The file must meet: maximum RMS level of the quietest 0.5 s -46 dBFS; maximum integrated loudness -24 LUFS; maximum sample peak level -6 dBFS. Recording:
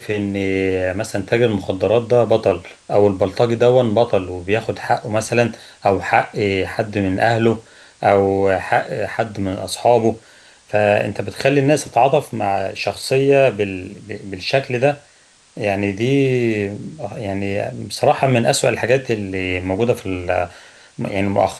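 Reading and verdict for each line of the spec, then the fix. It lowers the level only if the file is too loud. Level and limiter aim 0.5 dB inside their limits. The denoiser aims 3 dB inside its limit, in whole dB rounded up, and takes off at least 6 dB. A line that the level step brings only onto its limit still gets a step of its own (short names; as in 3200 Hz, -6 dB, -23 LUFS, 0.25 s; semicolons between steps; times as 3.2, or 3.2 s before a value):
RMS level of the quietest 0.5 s -51 dBFS: OK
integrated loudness -18.0 LUFS: fail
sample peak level -2.0 dBFS: fail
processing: gain -6.5 dB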